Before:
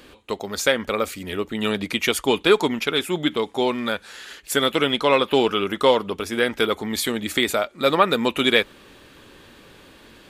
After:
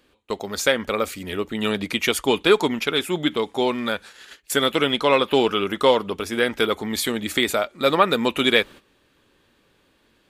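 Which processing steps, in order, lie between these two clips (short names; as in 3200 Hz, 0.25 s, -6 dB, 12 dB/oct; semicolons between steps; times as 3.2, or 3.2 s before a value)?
gate -38 dBFS, range -14 dB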